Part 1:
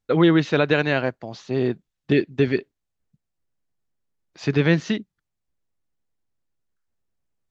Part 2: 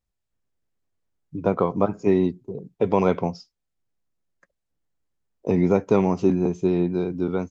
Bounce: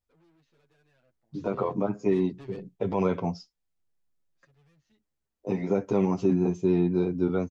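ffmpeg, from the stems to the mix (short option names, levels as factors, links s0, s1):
-filter_complex "[0:a]asubboost=boost=12:cutoff=72,aeval=exprs='(tanh(17.8*val(0)+0.35)-tanh(0.35))/17.8':c=same,volume=0.188[s0];[1:a]alimiter=limit=0.224:level=0:latency=1:release=36,volume=1,asplit=2[s1][s2];[s2]apad=whole_len=330782[s3];[s0][s3]sidechaingate=range=0.0891:threshold=0.00631:ratio=16:detection=peak[s4];[s4][s1]amix=inputs=2:normalize=0,asplit=2[s5][s6];[s6]adelay=8.7,afreqshift=-0.27[s7];[s5][s7]amix=inputs=2:normalize=1"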